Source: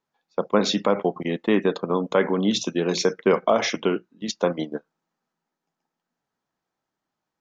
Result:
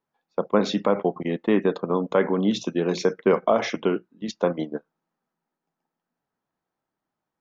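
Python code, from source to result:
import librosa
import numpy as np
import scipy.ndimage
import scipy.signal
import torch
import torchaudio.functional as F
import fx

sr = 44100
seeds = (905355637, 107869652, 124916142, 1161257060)

y = fx.high_shelf(x, sr, hz=3100.0, db=-10.5)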